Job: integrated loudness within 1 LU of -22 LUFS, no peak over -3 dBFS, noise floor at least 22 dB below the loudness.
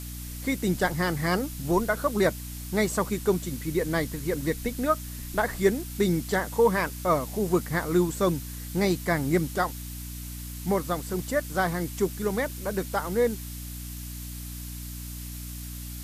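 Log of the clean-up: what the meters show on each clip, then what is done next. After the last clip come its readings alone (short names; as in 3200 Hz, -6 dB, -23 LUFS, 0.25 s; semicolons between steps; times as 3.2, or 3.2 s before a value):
hum 60 Hz; harmonics up to 300 Hz; hum level -36 dBFS; noise floor -38 dBFS; noise floor target -50 dBFS; loudness -28.0 LUFS; peak -10.0 dBFS; loudness target -22.0 LUFS
-> notches 60/120/180/240/300 Hz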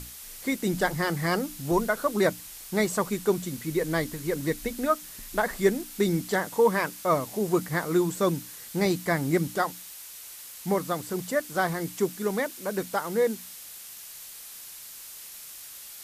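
hum none; noise floor -44 dBFS; noise floor target -50 dBFS
-> noise print and reduce 6 dB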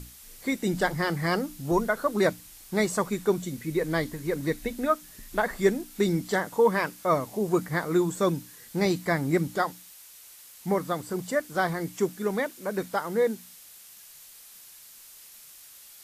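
noise floor -50 dBFS; loudness -27.5 LUFS; peak -10.5 dBFS; loudness target -22.0 LUFS
-> gain +5.5 dB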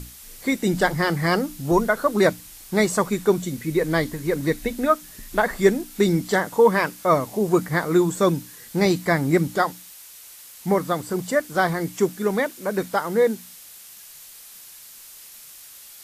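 loudness -22.0 LUFS; peak -5.0 dBFS; noise floor -44 dBFS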